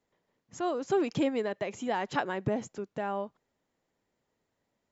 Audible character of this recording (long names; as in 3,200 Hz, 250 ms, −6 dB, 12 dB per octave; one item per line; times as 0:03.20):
background noise floor −82 dBFS
spectral slope −4.5 dB per octave